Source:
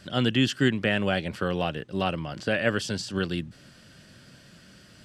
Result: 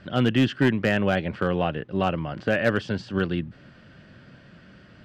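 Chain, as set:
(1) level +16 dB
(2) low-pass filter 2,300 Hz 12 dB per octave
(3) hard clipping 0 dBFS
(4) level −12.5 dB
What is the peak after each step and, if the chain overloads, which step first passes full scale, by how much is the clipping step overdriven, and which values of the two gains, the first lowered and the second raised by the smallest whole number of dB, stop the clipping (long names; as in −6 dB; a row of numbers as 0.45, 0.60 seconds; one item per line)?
+6.0, +5.0, 0.0, −12.5 dBFS
step 1, 5.0 dB
step 1 +11 dB, step 4 −7.5 dB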